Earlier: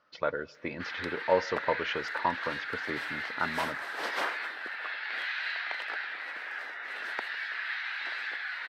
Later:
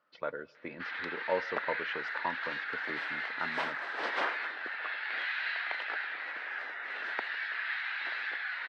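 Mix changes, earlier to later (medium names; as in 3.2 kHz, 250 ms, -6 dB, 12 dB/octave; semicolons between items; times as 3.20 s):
speech -6.0 dB; master: add band-pass 140–3800 Hz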